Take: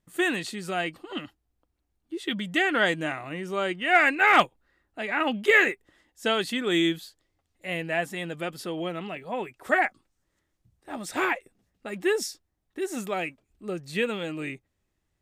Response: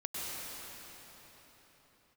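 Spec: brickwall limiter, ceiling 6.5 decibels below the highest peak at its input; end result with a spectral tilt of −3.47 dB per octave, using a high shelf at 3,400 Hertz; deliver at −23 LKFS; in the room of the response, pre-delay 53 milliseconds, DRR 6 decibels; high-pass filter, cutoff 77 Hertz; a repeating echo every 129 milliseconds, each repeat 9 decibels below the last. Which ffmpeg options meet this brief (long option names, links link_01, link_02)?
-filter_complex "[0:a]highpass=77,highshelf=frequency=3400:gain=3,alimiter=limit=-12.5dB:level=0:latency=1,aecho=1:1:129|258|387|516:0.355|0.124|0.0435|0.0152,asplit=2[link_01][link_02];[1:a]atrim=start_sample=2205,adelay=53[link_03];[link_02][link_03]afir=irnorm=-1:irlink=0,volume=-10dB[link_04];[link_01][link_04]amix=inputs=2:normalize=0,volume=3.5dB"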